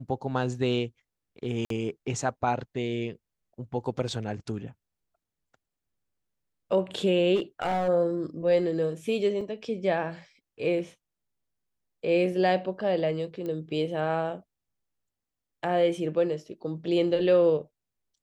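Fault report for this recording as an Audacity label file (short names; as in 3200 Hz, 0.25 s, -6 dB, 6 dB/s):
1.650000	1.700000	gap 53 ms
7.350000	7.890000	clipped -22.5 dBFS
9.410000	9.410000	gap 3.7 ms
13.460000	13.460000	pop -24 dBFS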